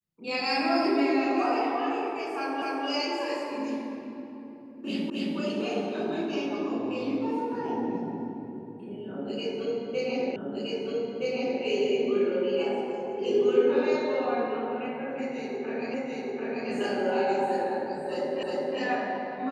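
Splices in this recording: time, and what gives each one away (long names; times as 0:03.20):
0:02.62: the same again, the last 0.25 s
0:05.10: the same again, the last 0.27 s
0:10.36: the same again, the last 1.27 s
0:15.94: the same again, the last 0.74 s
0:18.43: the same again, the last 0.36 s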